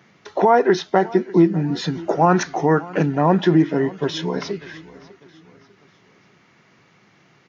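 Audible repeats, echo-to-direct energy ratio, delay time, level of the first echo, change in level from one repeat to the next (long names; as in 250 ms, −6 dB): 2, −19.5 dB, 597 ms, −20.5 dB, −7.5 dB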